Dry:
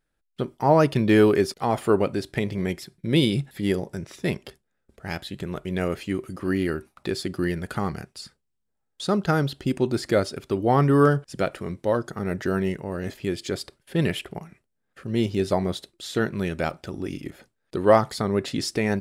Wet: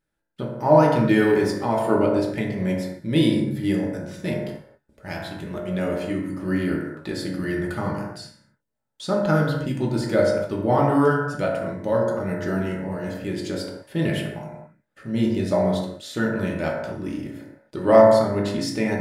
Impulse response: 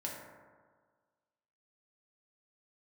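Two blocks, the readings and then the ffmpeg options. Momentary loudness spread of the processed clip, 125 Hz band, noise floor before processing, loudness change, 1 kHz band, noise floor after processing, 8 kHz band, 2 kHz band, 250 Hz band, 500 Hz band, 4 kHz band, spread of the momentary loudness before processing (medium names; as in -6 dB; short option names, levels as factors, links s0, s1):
15 LU, +0.5 dB, -76 dBFS, +2.0 dB, +2.0 dB, -76 dBFS, -2.0 dB, +1.5 dB, +2.0 dB, +3.0 dB, -2.0 dB, 15 LU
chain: -filter_complex "[1:a]atrim=start_sample=2205,afade=t=out:st=0.33:d=0.01,atrim=end_sample=14994[s0];[0:a][s0]afir=irnorm=-1:irlink=0"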